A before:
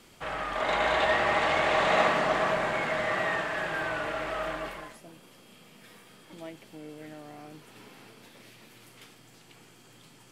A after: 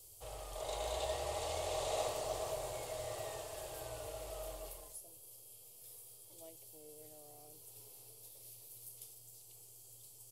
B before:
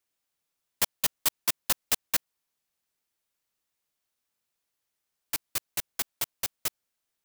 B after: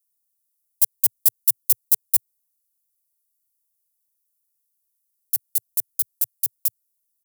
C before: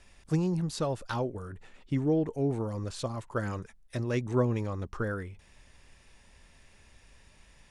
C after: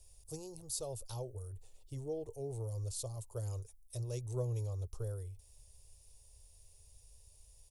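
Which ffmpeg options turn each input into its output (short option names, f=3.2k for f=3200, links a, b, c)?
-af "firequalizer=gain_entry='entry(110,0);entry(180,-30);entry(430,-7);entry(730,-11);entry(1600,-29);entry(2800,-14);entry(4600,-3);entry(11000,13)':delay=0.05:min_phase=1,volume=-2dB"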